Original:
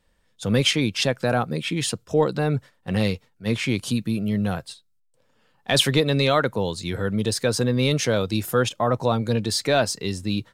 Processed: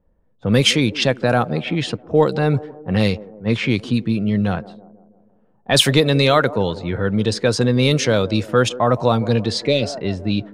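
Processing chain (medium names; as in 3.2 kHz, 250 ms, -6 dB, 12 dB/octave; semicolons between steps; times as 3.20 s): feedback echo behind a band-pass 163 ms, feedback 55%, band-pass 470 Hz, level -15.5 dB; spectral replace 9.60–9.89 s, 600–1900 Hz; level-controlled noise filter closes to 660 Hz, open at -15.5 dBFS; trim +5 dB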